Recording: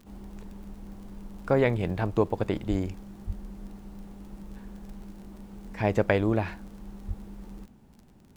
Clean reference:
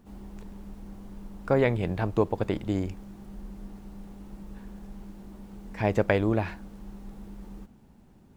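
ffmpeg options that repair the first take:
-filter_complex "[0:a]adeclick=t=4,asplit=3[a][b][c];[a]afade=t=out:st=2.69:d=0.02[d];[b]highpass=f=140:w=0.5412,highpass=f=140:w=1.3066,afade=t=in:st=2.69:d=0.02,afade=t=out:st=2.81:d=0.02[e];[c]afade=t=in:st=2.81:d=0.02[f];[d][e][f]amix=inputs=3:normalize=0,asplit=3[g][h][i];[g]afade=t=out:st=3.26:d=0.02[j];[h]highpass=f=140:w=0.5412,highpass=f=140:w=1.3066,afade=t=in:st=3.26:d=0.02,afade=t=out:st=3.38:d=0.02[k];[i]afade=t=in:st=3.38:d=0.02[l];[j][k][l]amix=inputs=3:normalize=0,asplit=3[m][n][o];[m]afade=t=out:st=7.07:d=0.02[p];[n]highpass=f=140:w=0.5412,highpass=f=140:w=1.3066,afade=t=in:st=7.07:d=0.02,afade=t=out:st=7.19:d=0.02[q];[o]afade=t=in:st=7.19:d=0.02[r];[p][q][r]amix=inputs=3:normalize=0"

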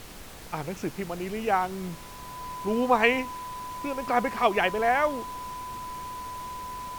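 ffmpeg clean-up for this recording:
-af "bandreject=f=1k:w=30,afftdn=nr=30:nf=-42"

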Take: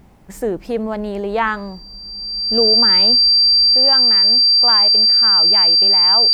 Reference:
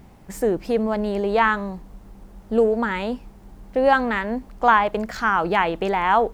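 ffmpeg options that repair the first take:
-af "bandreject=f=4.7k:w=30,asetnsamples=n=441:p=0,asendcmd='3.75 volume volume 7dB',volume=0dB"

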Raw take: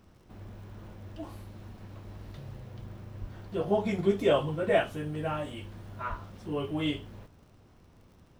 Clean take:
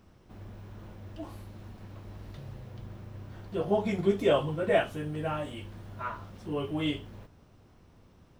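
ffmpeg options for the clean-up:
-filter_complex "[0:a]adeclick=t=4,asplit=3[a][b][c];[a]afade=t=out:st=3.2:d=0.02[d];[b]highpass=f=140:w=0.5412,highpass=f=140:w=1.3066,afade=t=in:st=3.2:d=0.02,afade=t=out:st=3.32:d=0.02[e];[c]afade=t=in:st=3.32:d=0.02[f];[d][e][f]amix=inputs=3:normalize=0,asplit=3[g][h][i];[g]afade=t=out:st=6.09:d=0.02[j];[h]highpass=f=140:w=0.5412,highpass=f=140:w=1.3066,afade=t=in:st=6.09:d=0.02,afade=t=out:st=6.21:d=0.02[k];[i]afade=t=in:st=6.21:d=0.02[l];[j][k][l]amix=inputs=3:normalize=0"

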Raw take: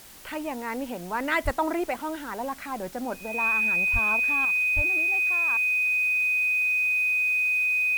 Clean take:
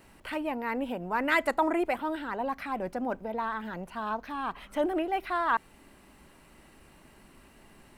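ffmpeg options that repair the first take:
-filter_complex "[0:a]bandreject=f=2.5k:w=30,asplit=3[a][b][c];[a]afade=t=out:st=1.44:d=0.02[d];[b]highpass=f=140:w=0.5412,highpass=f=140:w=1.3066,afade=t=in:st=1.44:d=0.02,afade=t=out:st=1.56:d=0.02[e];[c]afade=t=in:st=1.56:d=0.02[f];[d][e][f]amix=inputs=3:normalize=0,asplit=3[g][h][i];[g]afade=t=out:st=3.92:d=0.02[j];[h]highpass=f=140:w=0.5412,highpass=f=140:w=1.3066,afade=t=in:st=3.92:d=0.02,afade=t=out:st=4.04:d=0.02[k];[i]afade=t=in:st=4.04:d=0.02[l];[j][k][l]amix=inputs=3:normalize=0,asplit=3[m][n][o];[m]afade=t=out:st=4.75:d=0.02[p];[n]highpass=f=140:w=0.5412,highpass=f=140:w=1.3066,afade=t=in:st=4.75:d=0.02,afade=t=out:st=4.87:d=0.02[q];[o]afade=t=in:st=4.87:d=0.02[r];[p][q][r]amix=inputs=3:normalize=0,afwtdn=0.004,asetnsamples=n=441:p=0,asendcmd='4.45 volume volume 11.5dB',volume=0dB"

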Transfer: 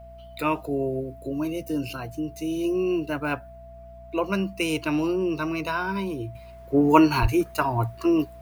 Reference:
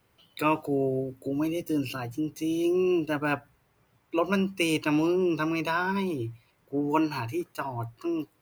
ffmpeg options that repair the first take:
-filter_complex "[0:a]bandreject=f=60.9:t=h:w=4,bandreject=f=121.8:t=h:w=4,bandreject=f=182.7:t=h:w=4,bandreject=f=243.6:t=h:w=4,bandreject=f=670:w=30,asplit=3[a][b][c];[a]afade=t=out:st=7.21:d=0.02[d];[b]highpass=f=140:w=0.5412,highpass=f=140:w=1.3066,afade=t=in:st=7.21:d=0.02,afade=t=out:st=7.33:d=0.02[e];[c]afade=t=in:st=7.33:d=0.02[f];[d][e][f]amix=inputs=3:normalize=0,asetnsamples=n=441:p=0,asendcmd='6.35 volume volume -9dB',volume=0dB"

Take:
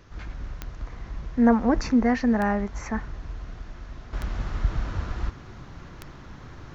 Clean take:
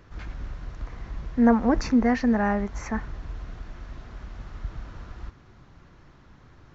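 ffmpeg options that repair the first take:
-filter_complex "[0:a]adeclick=t=4,asplit=3[a][b][c];[a]afade=t=out:st=4.95:d=0.02[d];[b]highpass=f=140:w=0.5412,highpass=f=140:w=1.3066,afade=t=in:st=4.95:d=0.02,afade=t=out:st=5.07:d=0.02[e];[c]afade=t=in:st=5.07:d=0.02[f];[d][e][f]amix=inputs=3:normalize=0,agate=range=-21dB:threshold=-35dB,asetnsamples=n=441:p=0,asendcmd='4.13 volume volume -9.5dB',volume=0dB"

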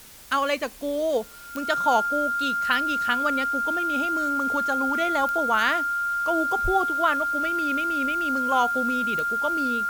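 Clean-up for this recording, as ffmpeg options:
-af "adeclick=t=4,bandreject=f=1.4k:w=30,afwtdn=0.0045"

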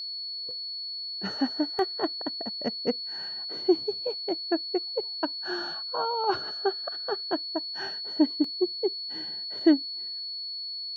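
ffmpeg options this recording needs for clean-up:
-af "bandreject=f=4.4k:w=30"

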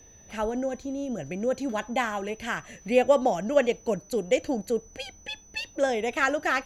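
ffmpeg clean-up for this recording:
-af "bandreject=f=6k:w=30"

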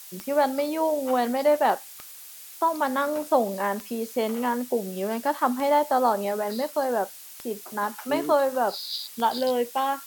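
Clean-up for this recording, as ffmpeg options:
-af "adeclick=t=4,afftdn=nr=26:nf=-44"

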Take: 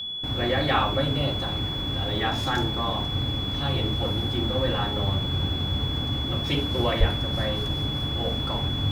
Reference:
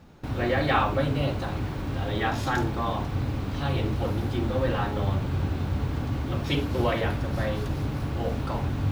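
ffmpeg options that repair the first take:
-filter_complex "[0:a]bandreject=f=3.4k:w=30,asplit=3[a][b][c];[a]afade=t=out:st=6.99:d=0.02[d];[b]highpass=f=140:w=0.5412,highpass=f=140:w=1.3066,afade=t=in:st=6.99:d=0.02,afade=t=out:st=7.11:d=0.02[e];[c]afade=t=in:st=7.11:d=0.02[f];[d][e][f]amix=inputs=3:normalize=0"

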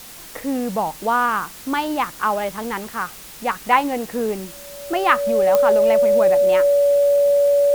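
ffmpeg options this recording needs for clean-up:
-af "adeclick=t=4,bandreject=f=570:w=30,afwtdn=0.011"

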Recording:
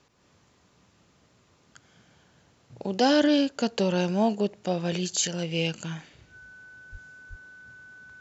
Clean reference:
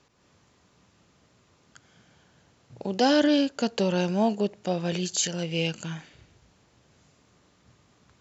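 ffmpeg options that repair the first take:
-filter_complex "[0:a]bandreject=f=1.5k:w=30,asplit=3[a][b][c];[a]afade=t=out:st=6.91:d=0.02[d];[b]highpass=f=140:w=0.5412,highpass=f=140:w=1.3066,afade=t=in:st=6.91:d=0.02,afade=t=out:st=7.03:d=0.02[e];[c]afade=t=in:st=7.03:d=0.02[f];[d][e][f]amix=inputs=3:normalize=0,asplit=3[g][h][i];[g]afade=t=out:st=7.29:d=0.02[j];[h]highpass=f=140:w=0.5412,highpass=f=140:w=1.3066,afade=t=in:st=7.29:d=0.02,afade=t=out:st=7.41:d=0.02[k];[i]afade=t=in:st=7.41:d=0.02[l];[j][k][l]amix=inputs=3:normalize=0"

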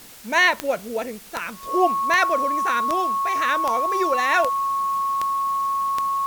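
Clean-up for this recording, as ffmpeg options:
-af "adeclick=t=4,bandreject=f=1.1k:w=30,afwtdn=0.0063"

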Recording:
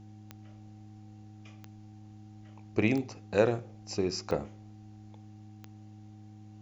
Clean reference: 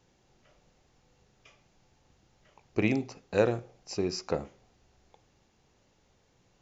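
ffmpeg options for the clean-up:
-af "adeclick=t=4,bandreject=f=105.2:t=h:w=4,bandreject=f=210.4:t=h:w=4,bandreject=f=315.6:t=h:w=4,bandreject=f=770:w=30"

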